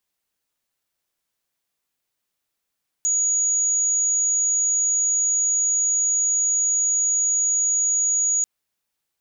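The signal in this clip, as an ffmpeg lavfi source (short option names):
-f lavfi -i "aevalsrc='0.133*sin(2*PI*6780*t)':d=5.39:s=44100"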